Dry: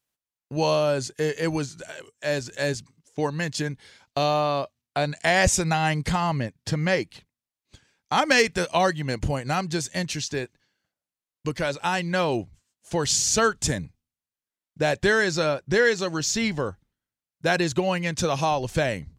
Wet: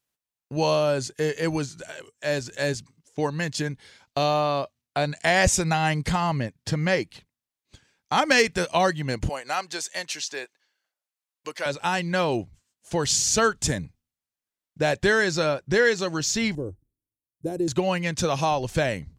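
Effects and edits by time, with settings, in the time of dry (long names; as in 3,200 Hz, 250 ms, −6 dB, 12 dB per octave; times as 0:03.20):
0:09.29–0:11.66: high-pass filter 580 Hz
0:16.55–0:17.68: drawn EQ curve 120 Hz 0 dB, 190 Hz −9 dB, 320 Hz +3 dB, 1,500 Hz −29 dB, 4,600 Hz −25 dB, 9,800 Hz −2 dB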